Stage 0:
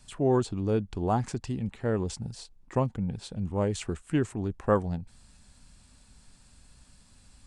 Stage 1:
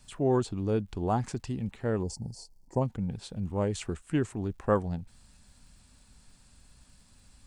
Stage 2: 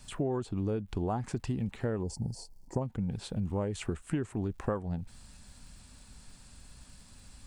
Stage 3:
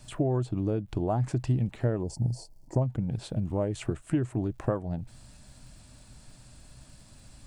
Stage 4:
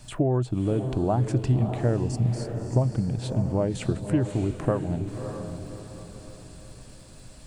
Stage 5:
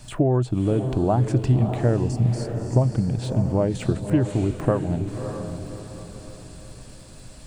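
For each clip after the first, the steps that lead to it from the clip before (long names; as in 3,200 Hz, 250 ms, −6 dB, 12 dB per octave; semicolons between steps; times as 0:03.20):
surface crackle 350 per second −60 dBFS; gain on a spectral selection 0:02.03–0:02.81, 1,000–4,200 Hz −18 dB; level −1.5 dB
dynamic equaliser 5,700 Hz, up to −6 dB, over −56 dBFS, Q 0.78; downward compressor 12 to 1, threshold −33 dBFS, peak gain reduction 14.5 dB; level +5 dB
thirty-one-band graphic EQ 125 Hz +11 dB, 315 Hz +7 dB, 630 Hz +9 dB
feedback delay with all-pass diffusion 607 ms, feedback 42%, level −7.5 dB; level +3.5 dB
de-essing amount 95%; level +3.5 dB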